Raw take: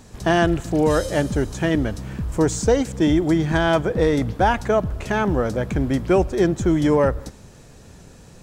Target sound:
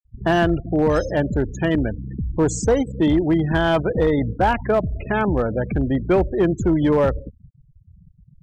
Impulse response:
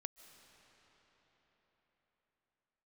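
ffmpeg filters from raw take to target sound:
-af "aeval=exprs='0.531*(cos(1*acos(clip(val(0)/0.531,-1,1)))-cos(1*PI/2))+0.0119*(cos(5*acos(clip(val(0)/0.531,-1,1)))-cos(5*PI/2))':channel_layout=same,afftfilt=real='re*gte(hypot(re,im),0.0501)':imag='im*gte(hypot(re,im),0.0501)':win_size=1024:overlap=0.75,volume=11dB,asoftclip=hard,volume=-11dB"

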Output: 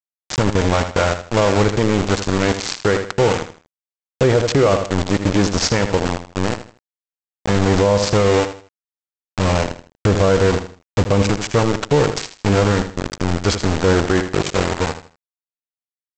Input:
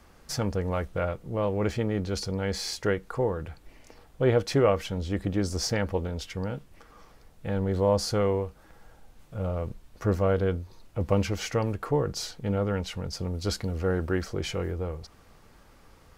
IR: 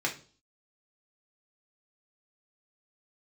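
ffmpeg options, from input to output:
-af "aresample=16000,aeval=exprs='val(0)*gte(abs(val(0)),0.0422)':channel_layout=same,aresample=44100,aecho=1:1:79|158|237:0.266|0.0798|0.0239,alimiter=level_in=19dB:limit=-1dB:release=50:level=0:latency=1,volume=-5dB"

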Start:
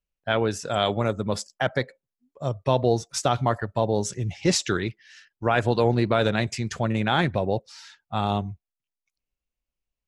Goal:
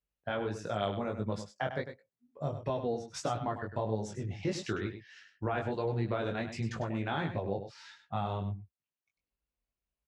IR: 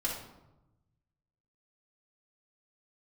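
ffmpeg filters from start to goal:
-filter_complex "[0:a]highpass=41,aemphasis=mode=reproduction:type=75kf,acompressor=threshold=-33dB:ratio=2.5,flanger=delay=18:depth=3.6:speed=1.5,asplit=2[link_01][link_02];[link_02]aecho=0:1:100:0.316[link_03];[link_01][link_03]amix=inputs=2:normalize=0,volume=2dB"

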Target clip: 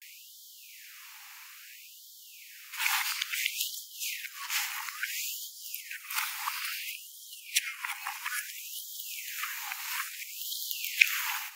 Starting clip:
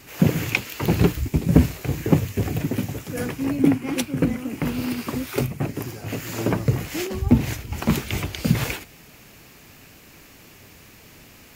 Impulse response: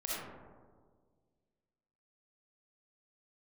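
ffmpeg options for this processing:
-af "areverse,afftfilt=real='re*gte(b*sr/1024,760*pow(3100/760,0.5+0.5*sin(2*PI*0.59*pts/sr)))':imag='im*gte(b*sr/1024,760*pow(3100/760,0.5+0.5*sin(2*PI*0.59*pts/sr)))':win_size=1024:overlap=0.75,volume=1.5dB"

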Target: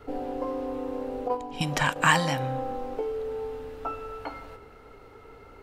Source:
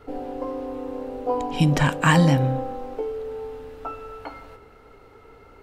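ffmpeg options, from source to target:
ffmpeg -i in.wav -filter_complex "[0:a]asettb=1/sr,asplit=3[link_01][link_02][link_03];[link_01]atrim=end=1.284[link_04];[link_02]atrim=start=1.28:end=1.96,asetpts=PTS-STARTPTS,afade=type=in:duration=0.004:curve=qsin,afade=type=out:start_time=0.676:duration=0.004:curve=qsin,agate=range=-9dB:threshold=-22dB:ratio=16:detection=peak[link_05];[link_03]atrim=start=1.956[link_06];[link_04][link_05]acrossfade=duration=0.004:curve1=hsin:curve2=qsin[link_07];[link_07][link_06]acrossfade=duration=0.004:curve1=qsin:curve2=hsin,acrossover=split=630|2500[link_08][link_09][link_10];[link_08]acompressor=threshold=-29dB:ratio=6[link_11];[link_11][link_09][link_10]amix=inputs=3:normalize=0" out.wav

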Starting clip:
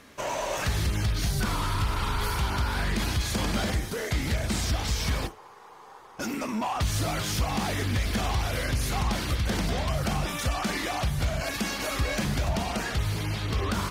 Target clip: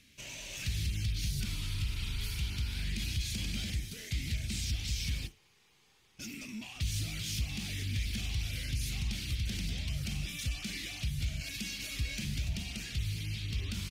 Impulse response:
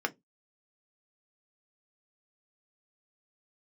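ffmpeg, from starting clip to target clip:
-af "firequalizer=gain_entry='entry(120,0);entry(480,-18);entry(1000,-24);entry(2400,2);entry(10000,-1)':delay=0.05:min_phase=1,volume=-6.5dB"

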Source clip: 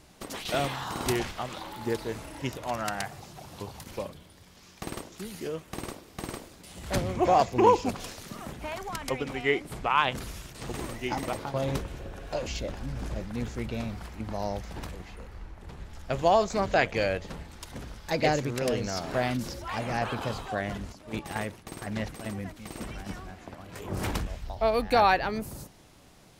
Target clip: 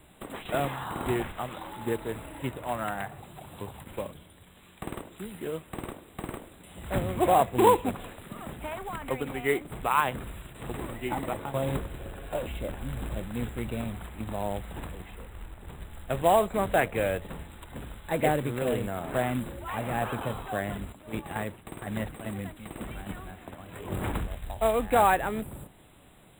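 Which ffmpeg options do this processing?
ffmpeg -i in.wav -filter_complex "[0:a]acrossover=split=270|2400[link_01][link_02][link_03];[link_03]acompressor=threshold=-51dB:ratio=6[link_04];[link_01][link_02][link_04]amix=inputs=3:normalize=0,acrusher=bits=3:mode=log:mix=0:aa=0.000001,asuperstop=centerf=5400:order=20:qfactor=1.6" out.wav

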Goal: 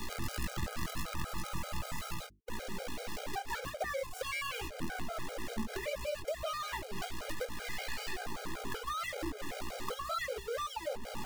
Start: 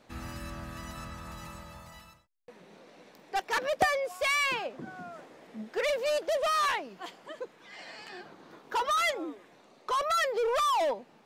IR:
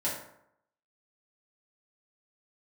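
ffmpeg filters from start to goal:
-filter_complex "[0:a]aeval=exprs='val(0)+0.5*0.02*sgn(val(0))':channel_layout=same,aeval=exprs='val(0)+0.00447*(sin(2*PI*60*n/s)+sin(2*PI*2*60*n/s)/2+sin(2*PI*3*60*n/s)/3+sin(2*PI*4*60*n/s)/4+sin(2*PI*5*60*n/s)/5)':channel_layout=same,acrusher=bits=6:dc=4:mix=0:aa=0.000001,flanger=delay=18:depth=7.2:speed=2.8,acompressor=threshold=-35dB:ratio=4,bandreject=frequency=50:width_type=h:width=6,bandreject=frequency=100:width_type=h:width=6,bandreject=frequency=150:width_type=h:width=6,bandreject=frequency=200:width_type=h:width=6,bandreject=frequency=250:width_type=h:width=6,bandreject=frequency=300:width_type=h:width=6,bandreject=frequency=350:width_type=h:width=6,bandreject=frequency=400:width_type=h:width=6,bandreject=frequency=450:width_type=h:width=6,acrossover=split=120[link_01][link_02];[link_02]acompressor=threshold=-43dB:ratio=3[link_03];[link_01][link_03]amix=inputs=2:normalize=0,afftfilt=real='re*gt(sin(2*PI*5.2*pts/sr)*(1-2*mod(floor(b*sr/1024/410),2)),0)':imag='im*gt(sin(2*PI*5.2*pts/sr)*(1-2*mod(floor(b*sr/1024/410),2)),0)':win_size=1024:overlap=0.75,volume=8.5dB"

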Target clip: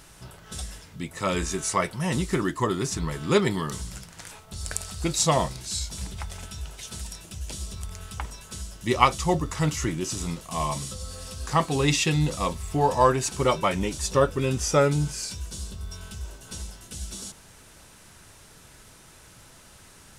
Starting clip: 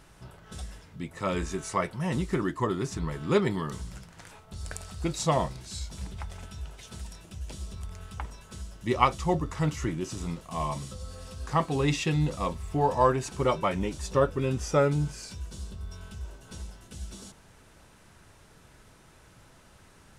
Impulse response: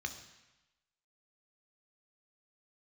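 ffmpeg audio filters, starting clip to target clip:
-af "highshelf=frequency=3300:gain=10,volume=2.5dB"

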